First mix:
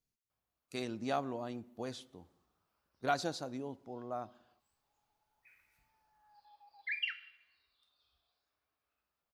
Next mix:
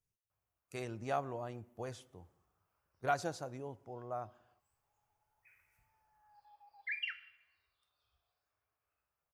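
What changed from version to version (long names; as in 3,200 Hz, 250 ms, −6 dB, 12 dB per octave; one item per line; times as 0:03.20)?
master: add graphic EQ with 15 bands 100 Hz +7 dB, 250 Hz −9 dB, 4,000 Hz −11 dB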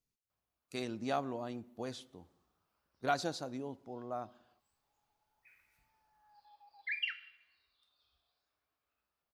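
master: add graphic EQ with 15 bands 100 Hz −7 dB, 250 Hz +9 dB, 4,000 Hz +11 dB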